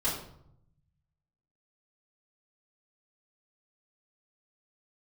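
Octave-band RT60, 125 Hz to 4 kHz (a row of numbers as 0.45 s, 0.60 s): 1.6 s, 1.0 s, 0.75 s, 0.70 s, 0.50 s, 0.45 s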